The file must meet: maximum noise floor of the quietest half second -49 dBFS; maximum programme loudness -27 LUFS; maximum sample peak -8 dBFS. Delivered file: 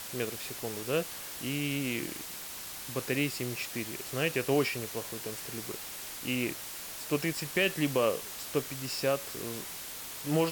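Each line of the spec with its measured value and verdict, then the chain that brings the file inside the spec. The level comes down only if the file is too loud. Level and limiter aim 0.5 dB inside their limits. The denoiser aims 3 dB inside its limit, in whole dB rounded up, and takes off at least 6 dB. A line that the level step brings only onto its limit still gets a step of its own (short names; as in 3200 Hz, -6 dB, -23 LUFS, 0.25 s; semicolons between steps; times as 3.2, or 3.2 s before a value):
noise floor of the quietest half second -42 dBFS: fail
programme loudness -33.0 LUFS: OK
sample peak -14.5 dBFS: OK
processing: denoiser 10 dB, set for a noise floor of -42 dBFS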